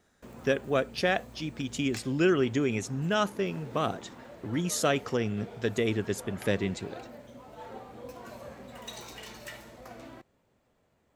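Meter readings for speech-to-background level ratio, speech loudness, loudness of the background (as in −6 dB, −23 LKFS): 16.5 dB, −30.0 LKFS, −46.5 LKFS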